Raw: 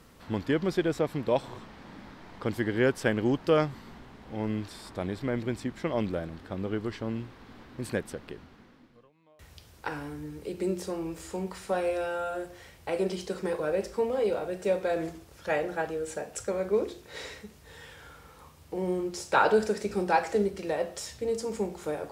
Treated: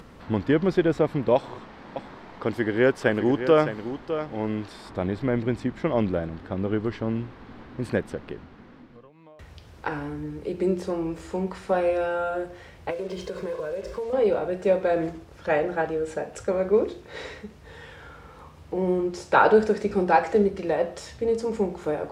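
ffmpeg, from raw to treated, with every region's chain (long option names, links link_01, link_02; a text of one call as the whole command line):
ffmpeg -i in.wav -filter_complex "[0:a]asettb=1/sr,asplit=3[link_01][link_02][link_03];[link_01]atrim=end=1.354[link_04];[link_02]atrim=start=1.35:end=4.91,asetpts=PTS-STARTPTS,afade=type=in:duration=0.004:curve=qsin,afade=type=out:start_time=3.556:duration=0.004:curve=qsin,bass=frequency=250:gain=-6,treble=frequency=4000:gain=2,aecho=1:1:608:0.316,atrim=end_sample=156996[link_05];[link_03]atrim=start=4.906[link_06];[link_04][link_05]acrossfade=duration=0.004:curve1=hsin:curve2=qsin[link_07];[link_07][link_06]acrossfade=duration=0.004:curve1=qsin:curve2=hsin,asettb=1/sr,asplit=3[link_08][link_09][link_10];[link_08]atrim=end=12.904[link_11];[link_09]atrim=start=12.9:end=14.13,asetpts=PTS-STARTPTS,afade=type=in:duration=0.004:curve=qsin,afade=type=out:start_time=1.226:duration=0.004:curve=qsin,aecho=1:1:1.9:0.64,atrim=end_sample=54243,acompressor=threshold=-33dB:ratio=8:attack=3.2:release=140:knee=1:detection=peak,acrusher=bits=7:mix=0:aa=0.5[link_12];[link_10]atrim=start=14.126[link_13];[link_11][link_12]acrossfade=duration=0.004:curve1=hsin:curve2=qsin[link_14];[link_14][link_13]acrossfade=duration=0.004:curve1=qsin:curve2=hsin,aemphasis=mode=reproduction:type=75kf,acompressor=mode=upward:threshold=-48dB:ratio=2.5,volume=6dB" out.wav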